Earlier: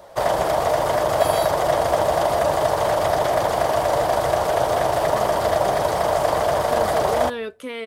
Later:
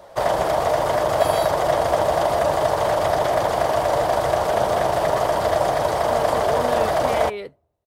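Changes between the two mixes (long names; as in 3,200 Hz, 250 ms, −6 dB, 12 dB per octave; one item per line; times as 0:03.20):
speech: entry −0.60 s
master: add high-shelf EQ 8,000 Hz −4 dB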